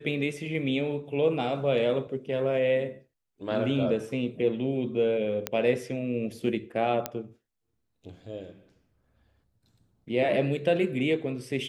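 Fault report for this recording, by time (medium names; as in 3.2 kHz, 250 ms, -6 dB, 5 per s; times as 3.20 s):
5.47 s: pop -11 dBFS
7.06 s: pop -12 dBFS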